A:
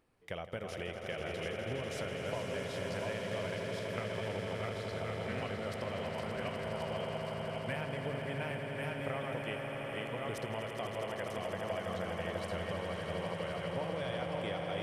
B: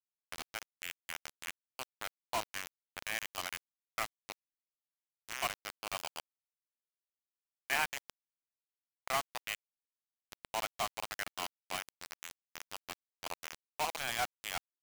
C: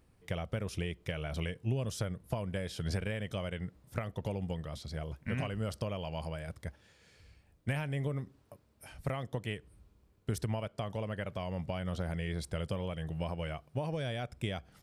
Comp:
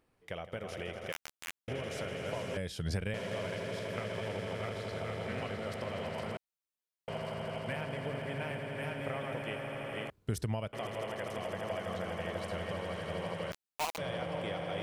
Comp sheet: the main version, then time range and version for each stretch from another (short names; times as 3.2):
A
1.12–1.68 from B
2.57–3.14 from C
6.37–7.08 from B
10.1–10.73 from C
13.52–13.98 from B